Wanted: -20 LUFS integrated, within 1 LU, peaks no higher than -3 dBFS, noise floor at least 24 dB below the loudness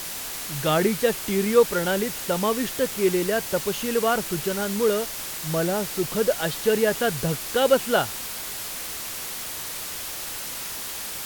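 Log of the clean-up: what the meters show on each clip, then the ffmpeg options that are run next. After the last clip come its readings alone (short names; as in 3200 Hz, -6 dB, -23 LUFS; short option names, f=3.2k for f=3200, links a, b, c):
noise floor -33 dBFS; noise floor target -49 dBFS; loudness -24.5 LUFS; peak -5.5 dBFS; loudness target -20.0 LUFS
-> -af "afftdn=nr=16:nf=-33"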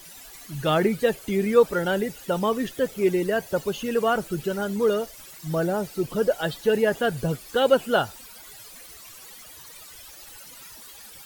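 noise floor -45 dBFS; noise floor target -49 dBFS
-> -af "afftdn=nr=6:nf=-45"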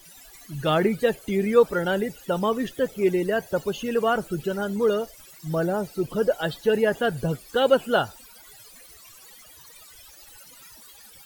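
noise floor -49 dBFS; loudness -24.5 LUFS; peak -6.0 dBFS; loudness target -20.0 LUFS
-> -af "volume=4.5dB,alimiter=limit=-3dB:level=0:latency=1"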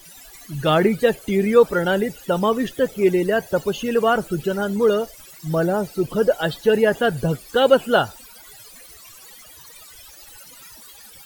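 loudness -20.0 LUFS; peak -3.0 dBFS; noise floor -45 dBFS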